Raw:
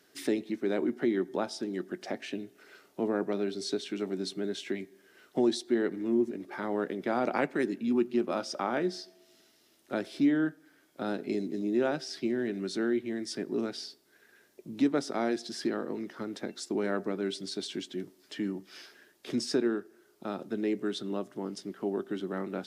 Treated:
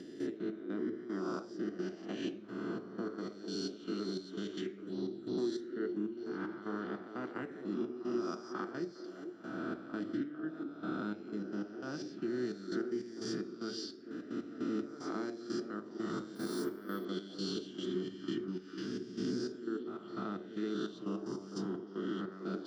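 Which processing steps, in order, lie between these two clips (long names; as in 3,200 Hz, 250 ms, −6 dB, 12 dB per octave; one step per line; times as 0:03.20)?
peak hold with a rise ahead of every peak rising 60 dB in 1.76 s
low-pass filter 2,200 Hz 6 dB per octave
downward compressor 6 to 1, threshold −36 dBFS, peak gain reduction 15.5 dB
gate pattern "..x.x..xx..xxx" 151 BPM −12 dB
0:04.66–0:05.38: phaser swept by the level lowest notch 570 Hz, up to 1,500 Hz, full sweep at −37 dBFS
echo through a band-pass that steps 449 ms, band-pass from 370 Hz, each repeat 0.7 octaves, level −6 dB
convolution reverb RT60 0.60 s, pre-delay 3 ms, DRR 9 dB
0:16.35–0:17.05: bad sample-rate conversion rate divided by 3×, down filtered, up hold
level −2 dB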